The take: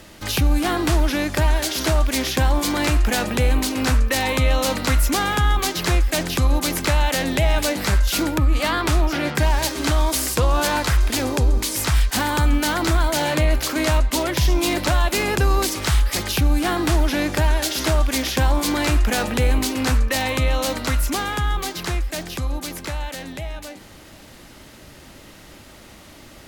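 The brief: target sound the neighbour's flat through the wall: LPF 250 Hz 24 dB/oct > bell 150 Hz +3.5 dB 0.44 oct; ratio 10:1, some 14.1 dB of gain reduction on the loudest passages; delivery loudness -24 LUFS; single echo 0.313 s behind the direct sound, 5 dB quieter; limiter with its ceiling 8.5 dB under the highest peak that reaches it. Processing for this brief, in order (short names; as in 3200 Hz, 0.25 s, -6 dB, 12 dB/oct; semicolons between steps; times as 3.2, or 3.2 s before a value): compressor 10:1, threshold -28 dBFS; limiter -24.5 dBFS; LPF 250 Hz 24 dB/oct; bell 150 Hz +3.5 dB 0.44 oct; echo 0.313 s -5 dB; gain +12.5 dB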